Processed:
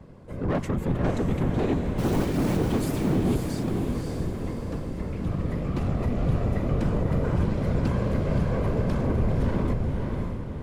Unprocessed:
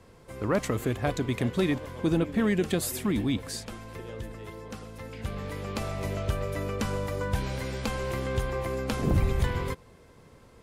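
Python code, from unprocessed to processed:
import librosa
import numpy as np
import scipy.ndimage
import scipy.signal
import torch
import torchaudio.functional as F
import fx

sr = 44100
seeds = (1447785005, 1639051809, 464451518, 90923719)

y = scipy.signal.sosfilt(scipy.signal.butter(4, 42.0, 'highpass', fs=sr, output='sos'), x)
y = fx.tilt_eq(y, sr, slope=-3.0)
y = 10.0 ** (-20.0 / 20.0) * np.tanh(y / 10.0 ** (-20.0 / 20.0))
y = fx.quant_dither(y, sr, seeds[0], bits=6, dither='none', at=(1.97, 2.56), fade=0.02)
y = fx.dispersion(y, sr, late='highs', ms=46.0, hz=1000.0, at=(7.03, 7.8))
y = fx.whisperise(y, sr, seeds[1])
y = np.clip(y, -10.0 ** (-19.5 / 20.0), 10.0 ** (-19.5 / 20.0))
y = fx.echo_diffused(y, sr, ms=543, feedback_pct=47, wet_db=-3.0)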